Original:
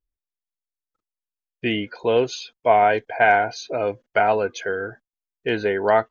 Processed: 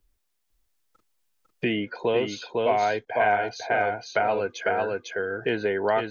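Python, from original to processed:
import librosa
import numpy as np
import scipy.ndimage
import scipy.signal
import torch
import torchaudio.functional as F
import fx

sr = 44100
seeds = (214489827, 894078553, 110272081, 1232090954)

y = x + 10.0 ** (-3.5 / 20.0) * np.pad(x, (int(501 * sr / 1000.0), 0))[:len(x)]
y = fx.band_squash(y, sr, depth_pct=70)
y = y * librosa.db_to_amplitude(-6.0)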